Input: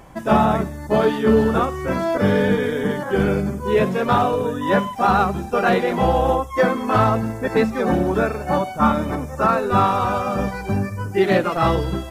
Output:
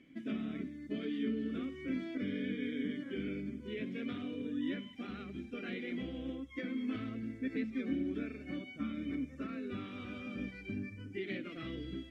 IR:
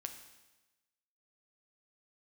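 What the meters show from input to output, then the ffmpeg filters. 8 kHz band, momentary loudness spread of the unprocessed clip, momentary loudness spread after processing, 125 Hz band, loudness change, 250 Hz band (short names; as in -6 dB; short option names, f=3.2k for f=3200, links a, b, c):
under -30 dB, 6 LU, 7 LU, -23.5 dB, -20.5 dB, -15.0 dB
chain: -filter_complex "[0:a]acompressor=threshold=-18dB:ratio=4,asubboost=boost=4:cutoff=90,asplit=3[a][b][c];[a]bandpass=f=270:t=q:w=8,volume=0dB[d];[b]bandpass=f=2.29k:t=q:w=8,volume=-6dB[e];[c]bandpass=f=3.01k:t=q:w=8,volume=-9dB[f];[d][e][f]amix=inputs=3:normalize=0,volume=-1.5dB"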